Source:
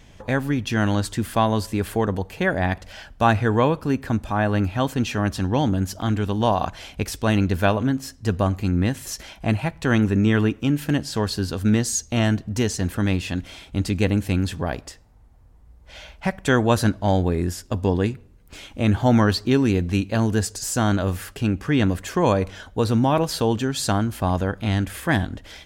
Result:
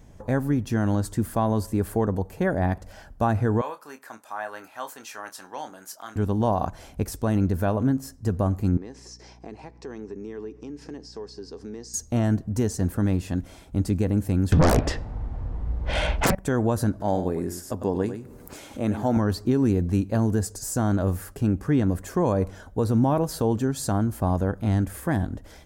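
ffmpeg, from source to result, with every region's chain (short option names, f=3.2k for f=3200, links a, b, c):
-filter_complex "[0:a]asettb=1/sr,asplit=3[a][b][c];[a]atrim=end=3.614[d];[b]atrim=start=3.61:end=6.16,asetpts=PTS-STARTPTS,afade=t=in:d=0.004:c=qsin,afade=t=out:st=2.546:d=0.004:c=qsin,highpass=1.1k,asplit=2[e][f];[f]adelay=27,volume=-9.5dB[g];[e][g]amix=inputs=2:normalize=0,atrim=end_sample=112455[h];[c]atrim=start=6.156[i];[d][h]acrossfade=d=0.004:c1=hsin:c2=qsin[j];[j][i]acrossfade=d=0.004:c1=qsin:c2=hsin,asettb=1/sr,asplit=3[k][l][m];[k]atrim=end=8.774[n];[l]atrim=start=8.77:end=11.94,asetpts=PTS-STARTPTS,afade=t=in:d=0.004:c=qsin,afade=t=out:st=3.166:d=0.004:c=qsin,highpass=370,equalizer=f=420:t=q:w=4:g=9,equalizer=f=600:t=q:w=4:g=-9,equalizer=f=1.4k:t=q:w=4:g=-9,equalizer=f=3.2k:t=q:w=4:g=-4,equalizer=f=5.2k:t=q:w=4:g=9,lowpass=f=6.4k:w=0.5412,lowpass=f=6.4k:w=1.3066,acompressor=threshold=-36dB:ratio=3:attack=3.2:release=140:knee=1:detection=peak,aeval=exprs='val(0)+0.00316*(sin(2*PI*60*n/s)+sin(2*PI*2*60*n/s)/2+sin(2*PI*3*60*n/s)/3+sin(2*PI*4*60*n/s)/4+sin(2*PI*5*60*n/s)/5)':c=same[o];[m]atrim=start=11.936[p];[n][o]acrossfade=d=0.004:c1=hsin:c2=qsin[q];[q][p]acrossfade=d=0.004:c1=qsin:c2=hsin,asettb=1/sr,asplit=3[r][s][t];[r]atrim=end=14.524[u];[s]atrim=start=14.52:end=16.35,asetpts=PTS-STARTPTS,afade=t=in:d=0.004:c=qsin,afade=t=out:st=1.826:d=0.004:c=qsin,lowpass=f=3.1k:t=q:w=1.9,aeval=exprs='0.355*sin(PI/2*7.94*val(0)/0.355)':c=same[v];[t]atrim=start=16.346[w];[u][v]acrossfade=d=0.004:c1=hsin:c2=qsin[x];[x][w]acrossfade=d=0.004:c1=qsin:c2=hsin,asettb=1/sr,asplit=3[y][z][aa];[y]atrim=end=17.004[ab];[z]atrim=start=17:end=19.17,asetpts=PTS-STARTPTS,afade=t=in:d=0.004:c=qsin,afade=t=out:st=2.166:d=0.004:c=qsin,highpass=f=310:p=1,aecho=1:1:100:0.316,atrim=end_sample=95697,acompressor=mode=upward:threshold=-26dB:ratio=2.5:attack=3.2:release=140:knee=2.83:detection=peak[ac];[aa]atrim=start=19.166[ad];[ab][ac]acrossfade=d=0.004:c1=hsin:c2=qsin[ae];[ae][ad]acrossfade=d=0.004:c1=qsin:c2=hsin,equalizer=f=3k:t=o:w=1.8:g=-15,alimiter=limit=-12dB:level=0:latency=1:release=89"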